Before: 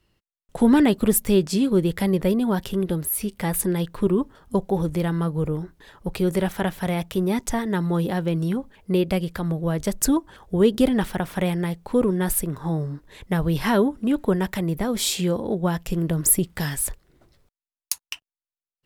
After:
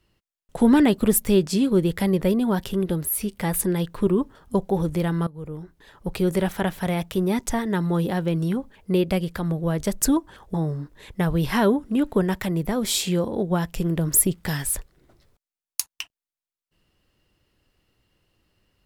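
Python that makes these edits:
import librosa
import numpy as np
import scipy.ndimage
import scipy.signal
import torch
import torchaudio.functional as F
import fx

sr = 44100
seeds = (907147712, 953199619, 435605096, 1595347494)

y = fx.edit(x, sr, fx.fade_in_from(start_s=5.27, length_s=0.86, floor_db=-18.0),
    fx.cut(start_s=10.54, length_s=2.12), tone=tone)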